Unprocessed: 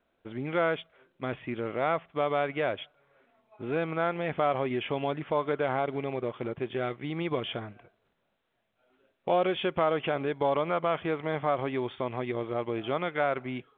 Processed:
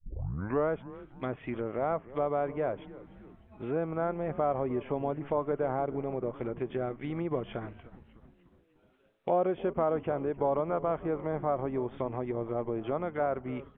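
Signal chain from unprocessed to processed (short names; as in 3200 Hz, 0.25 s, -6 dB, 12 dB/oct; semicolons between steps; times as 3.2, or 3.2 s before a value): tape start at the beginning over 0.69 s; treble ducked by the level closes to 1000 Hz, closed at -28 dBFS; frequency-shifting echo 0.301 s, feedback 57%, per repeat -130 Hz, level -17 dB; gain -1 dB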